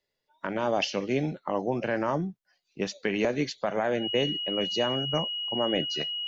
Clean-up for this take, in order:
notch filter 2,900 Hz, Q 30

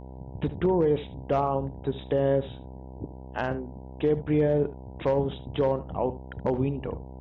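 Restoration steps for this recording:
hum removal 64.7 Hz, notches 15
echo removal 73 ms −15 dB

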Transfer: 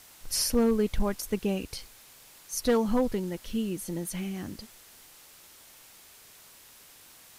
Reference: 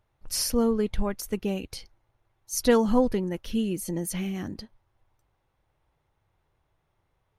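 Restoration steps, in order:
clipped peaks rebuilt −17 dBFS
noise reduction from a noise print 20 dB
level correction +3.5 dB, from 0:02.01

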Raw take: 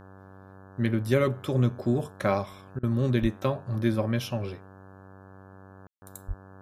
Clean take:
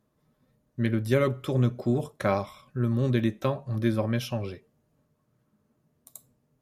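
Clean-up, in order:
hum removal 95.8 Hz, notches 18
0:03.21–0:03.33: high-pass filter 140 Hz 24 dB per octave
0:06.27–0:06.39: high-pass filter 140 Hz 24 dB per octave
ambience match 0:05.87–0:06.02
repair the gap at 0:02.79, 41 ms

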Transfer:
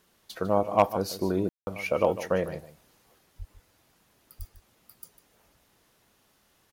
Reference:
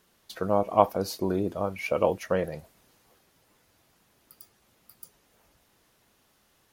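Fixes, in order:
clipped peaks rebuilt −9.5 dBFS
0:03.38–0:03.50: high-pass filter 140 Hz 24 dB per octave
0:04.38–0:04.50: high-pass filter 140 Hz 24 dB per octave
ambience match 0:01.49–0:01.67
echo removal 150 ms −14 dB

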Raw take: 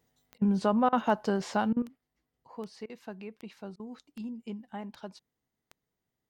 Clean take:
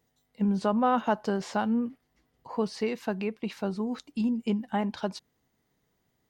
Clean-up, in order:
click removal
repair the gap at 0:00.38/0:00.89/0:01.73/0:02.86/0:03.76, 35 ms
level 0 dB, from 0:01.82 +11.5 dB

